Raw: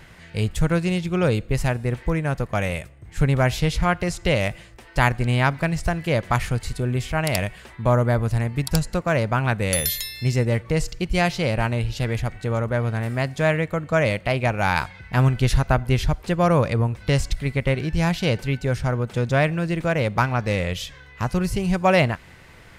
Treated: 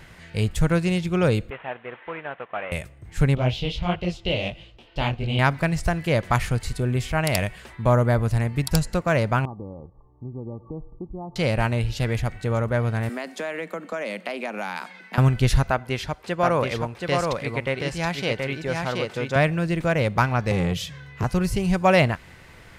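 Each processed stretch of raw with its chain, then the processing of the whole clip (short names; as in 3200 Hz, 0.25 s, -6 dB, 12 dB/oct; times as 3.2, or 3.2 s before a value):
1.5–2.72 CVSD 16 kbps + HPF 760 Hz + tilt -2 dB/oct
3.35–5.39 EQ curve 690 Hz 0 dB, 1800 Hz -11 dB, 3000 Hz +8 dB, 8700 Hz -17 dB + detuned doubles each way 54 cents
9.45–11.36 compressor 3:1, threshold -26 dBFS + rippled Chebyshev low-pass 1200 Hz, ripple 9 dB
13.09–15.18 steep high-pass 180 Hz 96 dB/oct + compressor 5:1, threshold -26 dBFS
15.7–19.36 HPF 420 Hz 6 dB/oct + high shelf 6800 Hz -8 dB + echo 0.726 s -3.5 dB
20.51–21.24 HPF 68 Hz + bell 150 Hz +13.5 dB 0.67 oct + core saturation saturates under 330 Hz
whole clip: dry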